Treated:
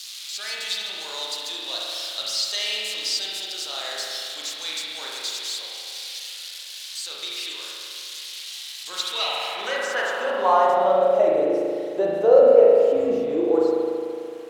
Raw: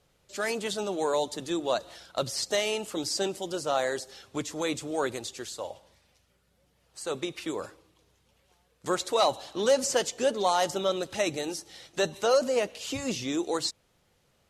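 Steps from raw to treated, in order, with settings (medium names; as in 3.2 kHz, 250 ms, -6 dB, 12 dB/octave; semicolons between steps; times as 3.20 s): zero-crossing glitches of -26 dBFS; spring tank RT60 2.5 s, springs 37 ms, chirp 40 ms, DRR -5 dB; band-pass sweep 4.1 kHz -> 470 Hz, 8.90–11.44 s; trim +8 dB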